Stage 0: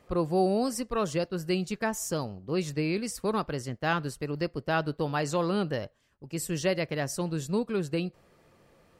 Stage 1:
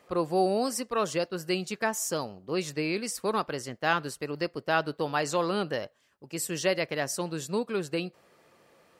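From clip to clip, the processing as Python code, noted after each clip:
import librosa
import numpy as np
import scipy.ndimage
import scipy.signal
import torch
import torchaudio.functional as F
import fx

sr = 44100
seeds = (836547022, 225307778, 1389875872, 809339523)

y = fx.highpass(x, sr, hz=410.0, slope=6)
y = F.gain(torch.from_numpy(y), 3.0).numpy()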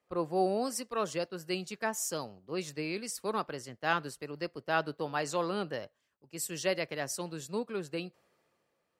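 y = fx.band_widen(x, sr, depth_pct=40)
y = F.gain(torch.from_numpy(y), -5.0).numpy()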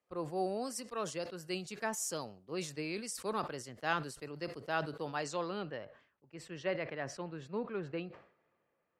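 y = fx.rider(x, sr, range_db=10, speed_s=2.0)
y = fx.filter_sweep_lowpass(y, sr, from_hz=11000.0, to_hz=2100.0, start_s=5.06, end_s=5.9, q=0.97)
y = fx.sustainer(y, sr, db_per_s=110.0)
y = F.gain(torch.from_numpy(y), -5.0).numpy()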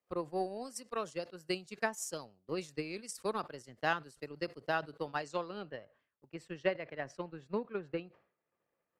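y = fx.transient(x, sr, attack_db=10, sustain_db=-8)
y = F.gain(torch.from_numpy(y), -4.0).numpy()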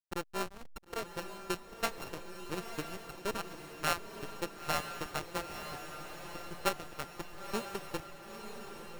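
y = np.r_[np.sort(x[:len(x) // 32 * 32].reshape(-1, 32), axis=1).ravel(), x[len(x) // 32 * 32:]]
y = fx.backlash(y, sr, play_db=-31.0)
y = fx.echo_diffused(y, sr, ms=963, feedback_pct=57, wet_db=-7.5)
y = F.gain(torch.from_numpy(y), 1.0).numpy()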